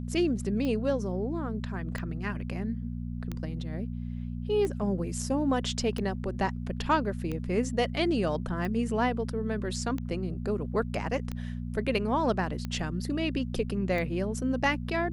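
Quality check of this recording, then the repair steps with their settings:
hum 60 Hz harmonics 4 -35 dBFS
tick 45 rpm -21 dBFS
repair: de-click; de-hum 60 Hz, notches 4

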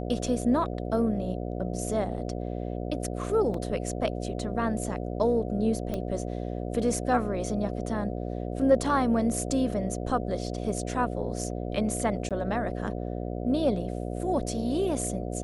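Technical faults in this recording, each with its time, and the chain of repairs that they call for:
buzz 60 Hz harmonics 12 -33 dBFS
3.54 s: dropout 3 ms
5.94 s: pop -19 dBFS
12.29–12.31 s: dropout 17 ms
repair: de-click; de-hum 60 Hz, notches 12; interpolate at 3.54 s, 3 ms; interpolate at 12.29 s, 17 ms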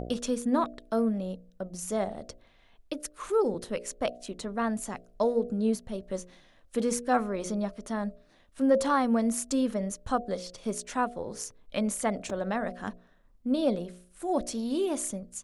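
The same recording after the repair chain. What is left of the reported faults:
nothing left

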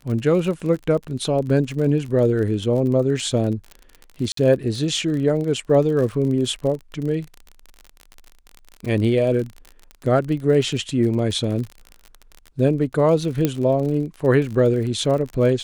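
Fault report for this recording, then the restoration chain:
crackle 40 per s -28 dBFS
4.32–4.37 s: dropout 53 ms
13.45 s: pop -6 dBFS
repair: de-click; interpolate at 4.32 s, 53 ms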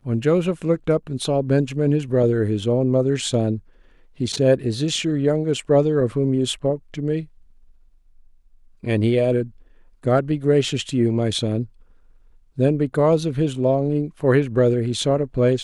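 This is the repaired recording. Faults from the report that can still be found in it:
nothing left

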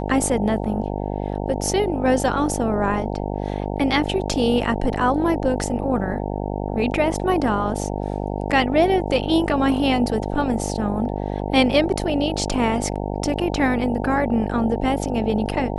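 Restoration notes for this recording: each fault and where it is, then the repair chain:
buzz 50 Hz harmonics 18 -26 dBFS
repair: de-hum 50 Hz, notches 18

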